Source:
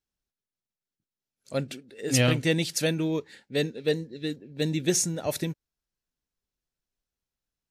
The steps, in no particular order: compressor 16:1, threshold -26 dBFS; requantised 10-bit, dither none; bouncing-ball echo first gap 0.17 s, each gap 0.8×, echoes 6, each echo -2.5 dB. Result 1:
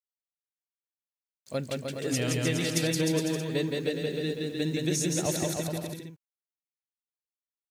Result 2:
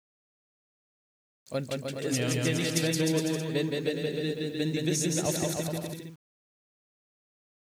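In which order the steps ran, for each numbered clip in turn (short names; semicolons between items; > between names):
requantised > compressor > bouncing-ball echo; compressor > bouncing-ball echo > requantised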